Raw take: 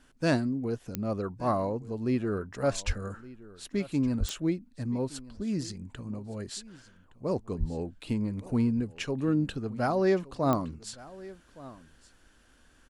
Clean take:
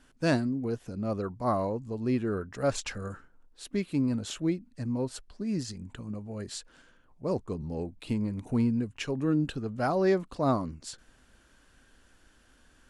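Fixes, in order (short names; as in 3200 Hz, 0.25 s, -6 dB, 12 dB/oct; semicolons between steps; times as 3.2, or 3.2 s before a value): de-click; 2.86–2.98 HPF 140 Hz 24 dB/oct; 4.19–4.31 HPF 140 Hz 24 dB/oct; 7.59–7.71 HPF 140 Hz 24 dB/oct; inverse comb 1.167 s -19.5 dB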